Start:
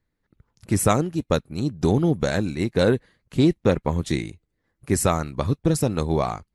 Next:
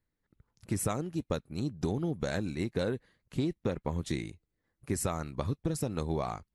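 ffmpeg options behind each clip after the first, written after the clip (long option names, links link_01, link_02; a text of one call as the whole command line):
ffmpeg -i in.wav -af "acompressor=threshold=-20dB:ratio=6,volume=-7dB" out.wav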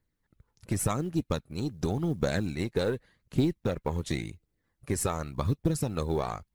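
ffmpeg -i in.wav -af "aeval=exprs='0.168*(cos(1*acos(clip(val(0)/0.168,-1,1)))-cos(1*PI/2))+0.0168*(cos(5*acos(clip(val(0)/0.168,-1,1)))-cos(5*PI/2))+0.00531*(cos(6*acos(clip(val(0)/0.168,-1,1)))-cos(6*PI/2))+0.0119*(cos(7*acos(clip(val(0)/0.168,-1,1)))-cos(7*PI/2))':channel_layout=same,aphaser=in_gain=1:out_gain=1:delay=2.5:decay=0.32:speed=0.89:type=triangular,acrusher=bits=9:mode=log:mix=0:aa=0.000001,volume=2dB" out.wav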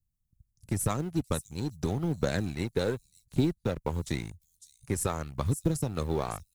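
ffmpeg -i in.wav -filter_complex "[0:a]acrossover=split=180|5800[link_01][link_02][link_03];[link_02]aeval=exprs='sgn(val(0))*max(abs(val(0))-0.00596,0)':channel_layout=same[link_04];[link_03]aecho=1:1:555:0.473[link_05];[link_01][link_04][link_05]amix=inputs=3:normalize=0" out.wav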